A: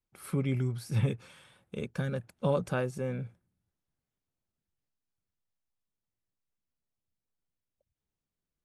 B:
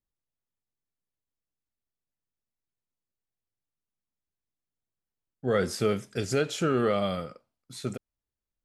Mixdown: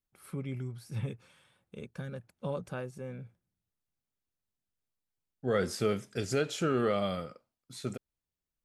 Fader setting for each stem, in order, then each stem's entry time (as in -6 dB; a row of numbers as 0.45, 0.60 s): -7.5, -3.5 dB; 0.00, 0.00 s